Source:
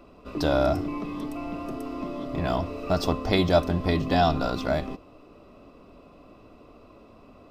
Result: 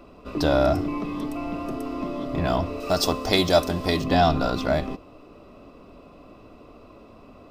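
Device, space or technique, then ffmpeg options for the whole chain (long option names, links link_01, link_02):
parallel distortion: -filter_complex "[0:a]asplit=2[link_01][link_02];[link_02]asoftclip=type=hard:threshold=-23dB,volume=-13dB[link_03];[link_01][link_03]amix=inputs=2:normalize=0,asettb=1/sr,asplit=3[link_04][link_05][link_06];[link_04]atrim=end=2.804[link_07];[link_05]atrim=start=2.8:end=4.04,asetpts=PTS-STARTPTS,afade=type=in:duration=0.004:curve=qsin,afade=type=out:start_time=1.236:duration=0.004:curve=qsin,bass=frequency=250:gain=-6,treble=frequency=4000:gain=10[link_08];[link_06]atrim=start=4.036[link_09];[link_07][link_08]acrossfade=duration=0.004:curve1=hsin:curve2=qsin[link_10];[link_10][link_09]acrossfade=duration=0.004:curve1=qsin:curve2=hsin,volume=1.5dB"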